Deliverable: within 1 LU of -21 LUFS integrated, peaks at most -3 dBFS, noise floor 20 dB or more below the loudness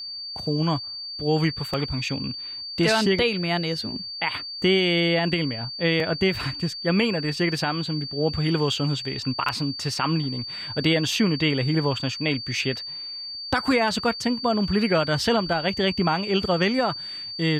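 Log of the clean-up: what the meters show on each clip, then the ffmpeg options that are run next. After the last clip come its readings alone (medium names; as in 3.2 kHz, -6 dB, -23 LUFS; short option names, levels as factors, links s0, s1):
steady tone 4.6 kHz; tone level -32 dBFS; loudness -24.0 LUFS; peak level -11.0 dBFS; loudness target -21.0 LUFS
-> -af "bandreject=f=4600:w=30"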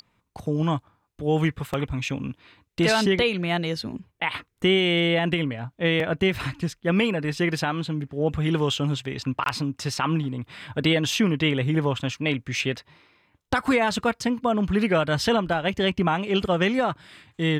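steady tone not found; loudness -24.5 LUFS; peak level -10.5 dBFS; loudness target -21.0 LUFS
-> -af "volume=1.5"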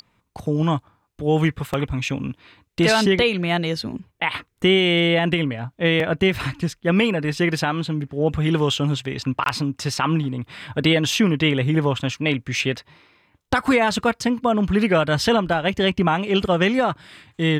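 loudness -21.0 LUFS; peak level -7.0 dBFS; noise floor -67 dBFS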